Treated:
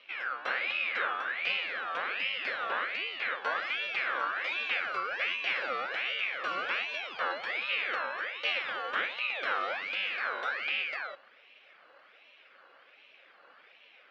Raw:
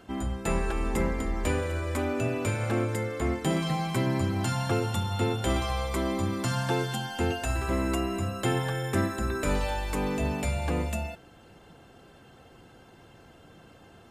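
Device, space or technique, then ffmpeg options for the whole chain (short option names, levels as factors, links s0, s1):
voice changer toy: -af "aeval=exprs='val(0)*sin(2*PI*1900*n/s+1900*0.35/1.3*sin(2*PI*1.3*n/s))':c=same,highpass=420,equalizer=f=530:t=q:w=4:g=8,equalizer=f=940:t=q:w=4:g=-7,equalizer=f=1900:t=q:w=4:g=-6,lowpass=f=3600:w=0.5412,lowpass=f=3600:w=1.3066"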